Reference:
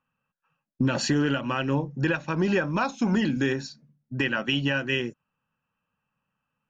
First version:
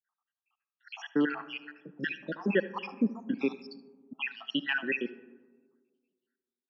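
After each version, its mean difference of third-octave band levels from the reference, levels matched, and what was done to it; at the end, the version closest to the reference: 10.5 dB: random spectral dropouts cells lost 79%; Chebyshev band-pass 190–4700 Hz, order 4; echo 75 ms -19 dB; digital reverb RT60 1.6 s, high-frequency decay 0.3×, pre-delay 15 ms, DRR 16.5 dB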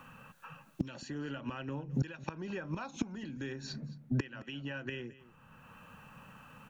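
5.5 dB: notch 5100 Hz, Q 11; flipped gate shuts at -21 dBFS, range -25 dB; echo 0.217 s -22.5 dB; three-band squash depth 70%; gain +6 dB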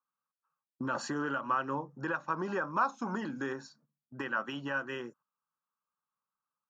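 4.0 dB: HPF 88 Hz; RIAA curve recording; gate -50 dBFS, range -9 dB; EQ curve 710 Hz 0 dB, 1200 Hz +9 dB, 2300 Hz -16 dB; gain -6 dB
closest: third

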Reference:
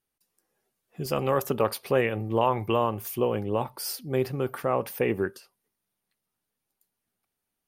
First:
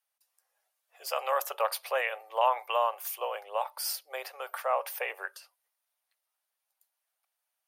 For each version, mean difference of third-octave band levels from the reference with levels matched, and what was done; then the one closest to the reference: 11.0 dB: steep high-pass 570 Hz 48 dB/oct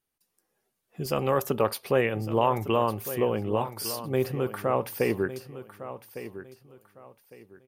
3.0 dB: feedback echo 1.156 s, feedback 27%, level -13 dB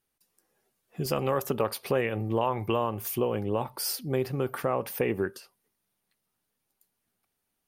2.0 dB: compressor 2:1, threshold -30 dBFS, peak gain reduction 7.5 dB; gain +3 dB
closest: third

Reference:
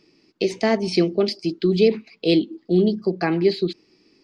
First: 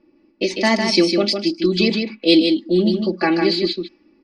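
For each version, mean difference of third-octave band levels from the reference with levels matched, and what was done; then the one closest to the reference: 6.0 dB: high shelf 2100 Hz +8.5 dB; comb 3.5 ms, depth 85%; echo 0.153 s -5.5 dB; low-pass opened by the level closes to 1000 Hz, open at -12 dBFS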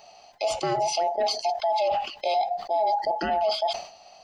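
11.5 dB: band inversion scrambler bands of 1000 Hz; reverse; compressor 6:1, threshold -24 dBFS, peak gain reduction 12.5 dB; reverse; limiter -24.5 dBFS, peak gain reduction 10 dB; sustainer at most 110 dB/s; gain +7.5 dB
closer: first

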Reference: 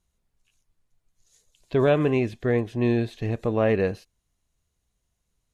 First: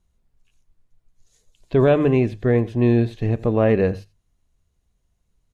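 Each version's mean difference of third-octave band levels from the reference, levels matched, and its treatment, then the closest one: 3.0 dB: tilt -1.5 dB/oct; notches 50/100/150 Hz; echo 85 ms -20 dB; gain +2.5 dB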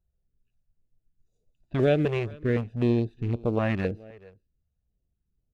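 4.5 dB: Wiener smoothing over 41 samples; echo 0.428 s -23 dB; stepped notch 3.9 Hz 260–1800 Hz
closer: first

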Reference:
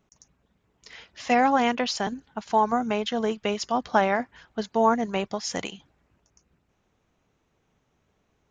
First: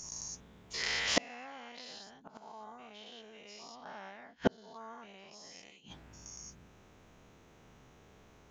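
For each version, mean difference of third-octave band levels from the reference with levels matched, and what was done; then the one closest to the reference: 9.5 dB: spectral dilation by 0.24 s; dynamic EQ 4100 Hz, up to +7 dB, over -36 dBFS, Q 0.76; flipped gate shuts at -17 dBFS, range -38 dB; gain +5 dB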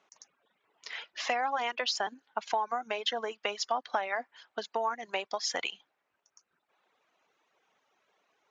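6.0 dB: reverb removal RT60 1.3 s; compressor 16:1, threshold -30 dBFS, peak gain reduction 16 dB; BPF 640–5300 Hz; gain +6 dB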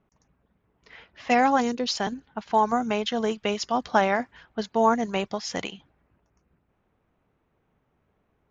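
1.0 dB: spectral gain 1.61–1.88, 520–3600 Hz -13 dB; low-pass opened by the level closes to 1900 Hz, open at -19 dBFS; high shelf 5200 Hz +7 dB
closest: third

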